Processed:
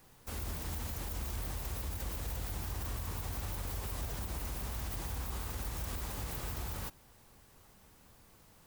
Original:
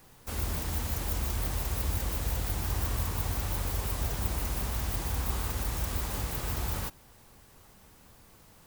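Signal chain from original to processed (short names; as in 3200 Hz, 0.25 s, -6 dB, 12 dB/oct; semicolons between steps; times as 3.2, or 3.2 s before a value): limiter -25 dBFS, peak gain reduction 8.5 dB; gain -4.5 dB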